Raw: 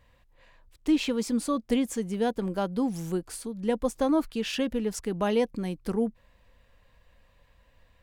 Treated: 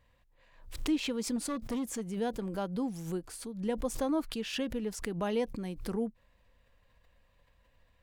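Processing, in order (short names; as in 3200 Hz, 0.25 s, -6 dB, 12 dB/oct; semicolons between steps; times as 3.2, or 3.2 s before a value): 1.36–2.06 hard clip -23.5 dBFS, distortion -19 dB; backwards sustainer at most 94 dB/s; gain -6.5 dB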